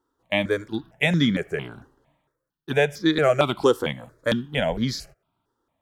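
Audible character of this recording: notches that jump at a steady rate 4.4 Hz 630–2700 Hz

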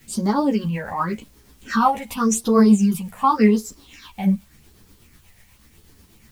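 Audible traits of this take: phasing stages 6, 0.88 Hz, lowest notch 320–2700 Hz; a quantiser's noise floor 10-bit, dither triangular; tremolo triangle 8.2 Hz, depth 45%; a shimmering, thickened sound

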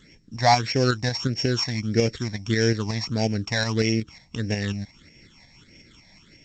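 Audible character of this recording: a buzz of ramps at a fixed pitch in blocks of 8 samples; phasing stages 8, 1.6 Hz, lowest notch 380–1200 Hz; tremolo saw up 5.5 Hz, depth 45%; G.722

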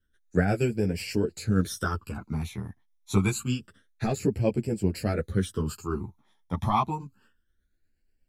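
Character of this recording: phasing stages 12, 0.27 Hz, lowest notch 470–1200 Hz; tremolo triangle 8.3 Hz, depth 40%; a shimmering, thickened sound

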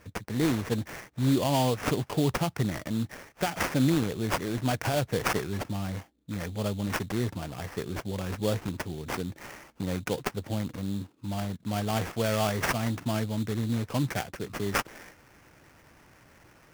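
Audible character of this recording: aliases and images of a low sample rate 3900 Hz, jitter 20%

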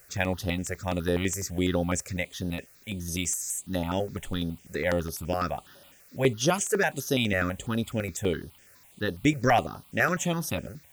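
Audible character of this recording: a quantiser's noise floor 10-bit, dither triangular; notches that jump at a steady rate 12 Hz 940–7400 Hz

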